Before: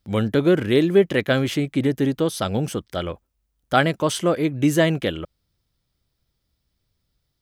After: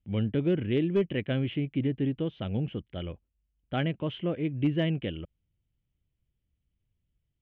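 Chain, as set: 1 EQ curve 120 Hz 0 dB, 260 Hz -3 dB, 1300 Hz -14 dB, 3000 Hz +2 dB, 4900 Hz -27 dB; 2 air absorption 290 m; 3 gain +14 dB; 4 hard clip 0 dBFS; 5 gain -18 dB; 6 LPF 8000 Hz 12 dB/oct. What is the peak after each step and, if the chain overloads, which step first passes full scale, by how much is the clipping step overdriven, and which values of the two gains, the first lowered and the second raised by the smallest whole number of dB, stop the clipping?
-10.5, -11.0, +3.0, 0.0, -18.0, -18.0 dBFS; step 3, 3.0 dB; step 3 +11 dB, step 5 -15 dB

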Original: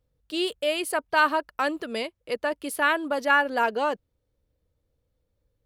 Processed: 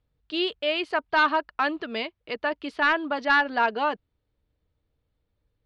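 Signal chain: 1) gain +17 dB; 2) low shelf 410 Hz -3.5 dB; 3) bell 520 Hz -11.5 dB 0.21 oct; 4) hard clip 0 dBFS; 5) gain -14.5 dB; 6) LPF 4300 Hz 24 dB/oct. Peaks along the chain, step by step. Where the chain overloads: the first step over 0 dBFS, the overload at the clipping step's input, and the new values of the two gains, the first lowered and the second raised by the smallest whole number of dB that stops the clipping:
+8.5, +8.5, +8.0, 0.0, -14.5, -13.0 dBFS; step 1, 8.0 dB; step 1 +9 dB, step 5 -6.5 dB

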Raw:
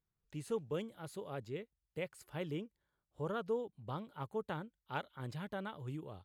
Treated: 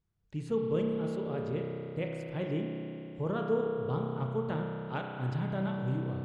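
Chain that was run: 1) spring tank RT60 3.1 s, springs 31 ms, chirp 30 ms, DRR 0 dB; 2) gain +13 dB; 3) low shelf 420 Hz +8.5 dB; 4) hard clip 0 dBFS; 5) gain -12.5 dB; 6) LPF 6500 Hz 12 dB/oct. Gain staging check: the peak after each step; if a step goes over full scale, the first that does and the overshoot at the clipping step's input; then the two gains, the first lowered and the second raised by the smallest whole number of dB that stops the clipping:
-23.0, -10.0, -5.5, -5.5, -18.0, -18.0 dBFS; no overload

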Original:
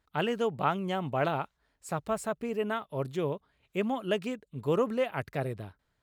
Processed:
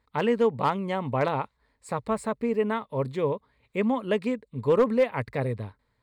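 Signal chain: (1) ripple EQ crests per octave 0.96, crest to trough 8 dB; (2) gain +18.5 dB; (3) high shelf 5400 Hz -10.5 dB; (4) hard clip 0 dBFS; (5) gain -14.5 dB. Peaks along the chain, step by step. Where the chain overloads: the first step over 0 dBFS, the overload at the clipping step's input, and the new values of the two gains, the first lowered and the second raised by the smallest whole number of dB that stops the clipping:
-13.5, +5.0, +5.0, 0.0, -14.5 dBFS; step 2, 5.0 dB; step 2 +13.5 dB, step 5 -9.5 dB

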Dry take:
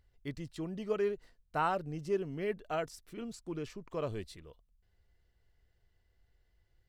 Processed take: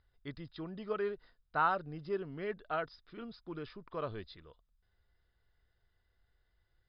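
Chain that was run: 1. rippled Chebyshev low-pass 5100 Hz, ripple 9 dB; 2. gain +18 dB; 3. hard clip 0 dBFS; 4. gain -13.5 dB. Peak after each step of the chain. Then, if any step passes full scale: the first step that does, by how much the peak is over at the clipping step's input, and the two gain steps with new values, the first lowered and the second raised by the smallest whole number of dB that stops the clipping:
-22.0, -4.0, -4.0, -17.5 dBFS; no overload

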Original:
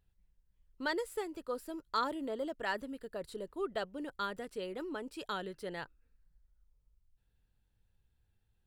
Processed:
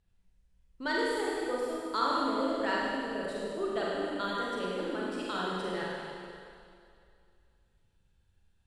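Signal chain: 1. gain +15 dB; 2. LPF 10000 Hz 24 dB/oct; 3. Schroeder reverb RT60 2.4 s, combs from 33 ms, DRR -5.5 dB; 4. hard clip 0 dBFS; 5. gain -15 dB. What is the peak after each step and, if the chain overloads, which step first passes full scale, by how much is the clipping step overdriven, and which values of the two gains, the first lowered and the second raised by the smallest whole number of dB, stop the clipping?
-5.0, -5.0, -2.0, -2.0, -17.0 dBFS; no overload

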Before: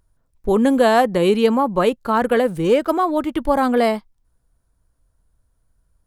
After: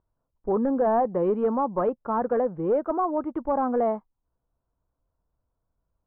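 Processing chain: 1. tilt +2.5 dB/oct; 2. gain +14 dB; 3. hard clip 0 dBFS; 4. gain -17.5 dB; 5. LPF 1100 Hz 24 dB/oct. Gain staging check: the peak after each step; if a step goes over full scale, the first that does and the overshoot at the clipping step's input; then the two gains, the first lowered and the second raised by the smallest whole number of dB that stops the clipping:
-4.0, +10.0, 0.0, -17.5, -16.0 dBFS; step 2, 10.0 dB; step 2 +4 dB, step 4 -7.5 dB

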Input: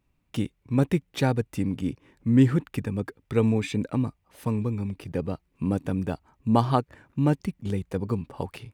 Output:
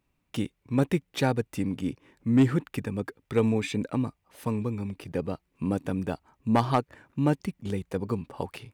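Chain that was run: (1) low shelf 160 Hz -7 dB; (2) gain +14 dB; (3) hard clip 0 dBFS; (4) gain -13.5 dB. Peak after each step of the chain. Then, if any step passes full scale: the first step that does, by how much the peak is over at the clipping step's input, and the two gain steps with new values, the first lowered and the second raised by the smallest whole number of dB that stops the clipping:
-7.0, +7.0, 0.0, -13.5 dBFS; step 2, 7.0 dB; step 2 +7 dB, step 4 -6.5 dB

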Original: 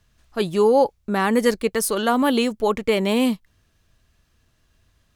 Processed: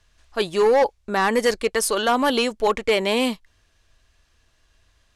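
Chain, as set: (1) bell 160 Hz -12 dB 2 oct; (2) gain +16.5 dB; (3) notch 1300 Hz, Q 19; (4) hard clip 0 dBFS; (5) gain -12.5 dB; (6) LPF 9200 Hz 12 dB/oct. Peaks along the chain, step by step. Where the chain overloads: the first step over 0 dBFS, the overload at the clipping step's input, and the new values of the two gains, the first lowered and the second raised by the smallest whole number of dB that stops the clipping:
-8.0, +8.5, +8.0, 0.0, -12.5, -12.0 dBFS; step 2, 8.0 dB; step 2 +8.5 dB, step 5 -4.5 dB

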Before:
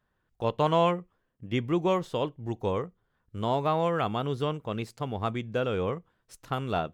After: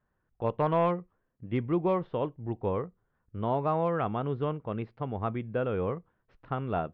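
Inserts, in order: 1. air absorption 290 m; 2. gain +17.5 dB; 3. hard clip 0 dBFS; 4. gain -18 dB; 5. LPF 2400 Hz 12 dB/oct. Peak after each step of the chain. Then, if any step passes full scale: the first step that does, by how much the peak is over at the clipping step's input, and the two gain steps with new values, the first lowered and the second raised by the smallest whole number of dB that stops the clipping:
-13.0, +4.5, 0.0, -18.0, -17.5 dBFS; step 2, 4.5 dB; step 2 +12.5 dB, step 4 -13 dB

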